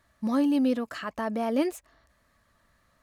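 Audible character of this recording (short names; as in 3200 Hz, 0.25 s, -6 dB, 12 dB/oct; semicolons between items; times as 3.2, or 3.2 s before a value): noise floor -68 dBFS; spectral tilt -4.5 dB/oct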